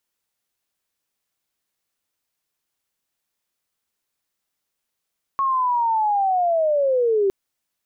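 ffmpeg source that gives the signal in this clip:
-f lavfi -i "aevalsrc='pow(10,(-17.5+2*t/1.91)/20)*sin(2*PI*(1100*t-720*t*t/(2*1.91)))':d=1.91:s=44100"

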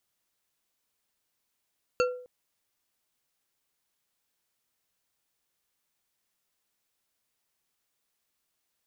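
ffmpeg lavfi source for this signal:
-f lavfi -i "aevalsrc='0.1*pow(10,-3*t/0.55)*sin(2*PI*498*t)+0.0631*pow(10,-3*t/0.27)*sin(2*PI*1373*t)+0.0398*pow(10,-3*t/0.169)*sin(2*PI*2691.2*t)+0.0251*pow(10,-3*t/0.119)*sin(2*PI*4448.6*t)+0.0158*pow(10,-3*t/0.09)*sin(2*PI*6643.3*t)':d=0.26:s=44100"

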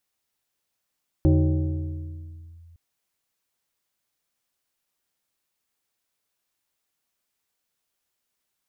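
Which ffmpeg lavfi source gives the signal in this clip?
-f lavfi -i "aevalsrc='0.224*pow(10,-3*t/2.58)*sin(2*PI*84.1*t+1.2*clip(1-t/1.38,0,1)*sin(2*PI*2.73*84.1*t))':d=1.51:s=44100"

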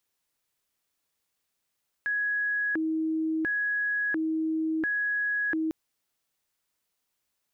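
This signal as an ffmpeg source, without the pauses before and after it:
-f lavfi -i "aevalsrc='0.0562*sin(2*PI*(994*t+676/0.72*(0.5-abs(mod(0.72*t,1)-0.5))))':d=3.65:s=44100"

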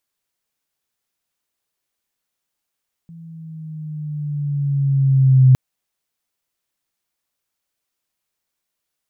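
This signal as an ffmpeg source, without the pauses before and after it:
-f lavfi -i "aevalsrc='pow(10,(-6+30*(t/2.46-1))/20)*sin(2*PI*167*2.46/(-4.5*log(2)/12)*(exp(-4.5*log(2)/12*t/2.46)-1))':d=2.46:s=44100"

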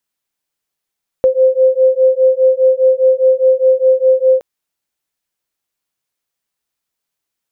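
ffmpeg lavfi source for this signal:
-f lavfi -i "aevalsrc='0.282*(sin(2*PI*518*t)+sin(2*PI*522.9*t))':d=3.17:s=44100"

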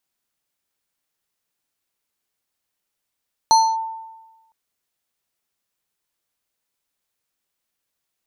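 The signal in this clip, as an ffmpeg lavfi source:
-f lavfi -i "aevalsrc='0.398*pow(10,-3*t/1.17)*sin(2*PI*895*t+0.59*clip(1-t/0.26,0,1)*sin(2*PI*5.71*895*t))':d=1.01:s=44100"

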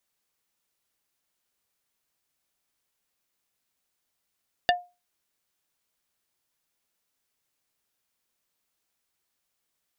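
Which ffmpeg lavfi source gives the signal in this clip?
-f lavfi -i "aevalsrc='0.168*pow(10,-3*t/0.27)*sin(2*PI*711*t)+0.133*pow(10,-3*t/0.09)*sin(2*PI*1777.5*t)+0.106*pow(10,-3*t/0.051)*sin(2*PI*2844*t)+0.0841*pow(10,-3*t/0.039)*sin(2*PI*3555*t)+0.0668*pow(10,-3*t/0.029)*sin(2*PI*4621.5*t)':d=0.45:s=44100"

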